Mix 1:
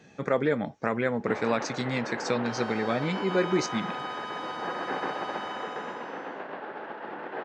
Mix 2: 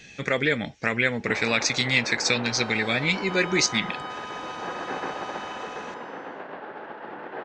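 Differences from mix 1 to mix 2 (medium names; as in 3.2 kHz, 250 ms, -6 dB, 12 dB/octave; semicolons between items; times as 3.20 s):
speech: add resonant high shelf 1.6 kHz +12.5 dB, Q 1.5; master: remove high-pass 130 Hz 12 dB/octave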